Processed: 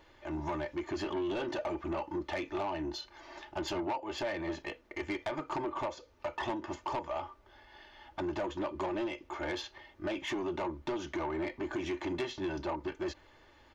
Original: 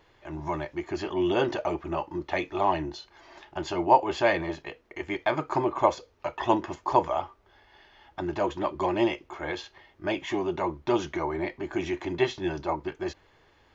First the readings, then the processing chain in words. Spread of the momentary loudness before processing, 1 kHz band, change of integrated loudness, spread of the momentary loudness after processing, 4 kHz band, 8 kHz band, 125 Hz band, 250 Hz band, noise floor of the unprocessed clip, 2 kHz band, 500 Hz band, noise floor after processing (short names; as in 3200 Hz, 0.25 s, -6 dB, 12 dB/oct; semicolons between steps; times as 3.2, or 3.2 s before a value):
12 LU, -11.0 dB, -8.5 dB, 7 LU, -4.5 dB, n/a, -8.0 dB, -6.0 dB, -62 dBFS, -7.0 dB, -8.5 dB, -62 dBFS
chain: comb 3.4 ms, depth 39%; compressor 8:1, threshold -28 dBFS, peak gain reduction 16.5 dB; soft clip -29 dBFS, distortion -12 dB